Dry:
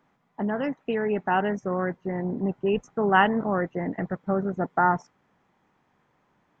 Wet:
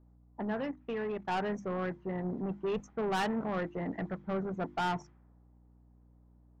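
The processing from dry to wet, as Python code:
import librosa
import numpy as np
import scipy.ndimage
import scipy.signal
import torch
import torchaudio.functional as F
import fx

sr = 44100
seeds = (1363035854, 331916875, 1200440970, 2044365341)

y = 10.0 ** (-23.0 / 20.0) * np.tanh(x / 10.0 ** (-23.0 / 20.0))
y = fx.env_lowpass(y, sr, base_hz=590.0, full_db=-27.5)
y = fx.level_steps(y, sr, step_db=15, at=(0.63, 1.29))
y = fx.hum_notches(y, sr, base_hz=50, count=7)
y = fx.add_hum(y, sr, base_hz=60, snr_db=25)
y = y * 10.0 ** (-4.5 / 20.0)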